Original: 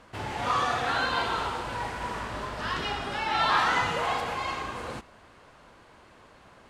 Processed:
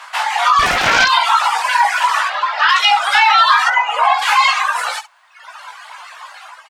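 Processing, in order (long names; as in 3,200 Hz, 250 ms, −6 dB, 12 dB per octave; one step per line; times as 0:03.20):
downward compressor 12 to 1, threshold −30 dBFS, peak gain reduction 11.5 dB
Butterworth high-pass 800 Hz 36 dB per octave
0:03.68–0:04.22: spectral tilt −3.5 dB per octave
reverb reduction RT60 1.5 s
automatic gain control gain up to 6 dB
reverb reduction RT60 1.3 s
0:02.28–0:02.69: high-frequency loss of the air 190 metres
ambience of single reflections 17 ms −5 dB, 68 ms −15 dB
boost into a limiter +21.5 dB
0:00.59–0:01.08: highs frequency-modulated by the lows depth 0.66 ms
level −1 dB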